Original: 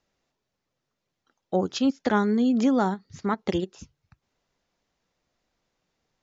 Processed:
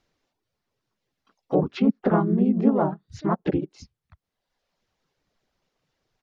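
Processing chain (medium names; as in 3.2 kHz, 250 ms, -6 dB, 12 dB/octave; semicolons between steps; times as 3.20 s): reverb removal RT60 1.1 s; harmony voices -4 st -1 dB, -3 st -3 dB, +7 st -17 dB; low-pass that closes with the level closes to 1.1 kHz, closed at -20 dBFS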